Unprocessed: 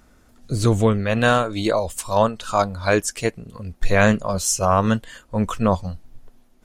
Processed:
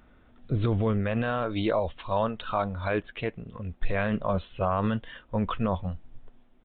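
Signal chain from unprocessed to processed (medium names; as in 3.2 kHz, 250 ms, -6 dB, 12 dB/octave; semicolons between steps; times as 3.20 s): peak limiter -13 dBFS, peak gain reduction 11 dB; 0.76–1.42 s: distance through air 200 m; resampled via 8 kHz; trim -3 dB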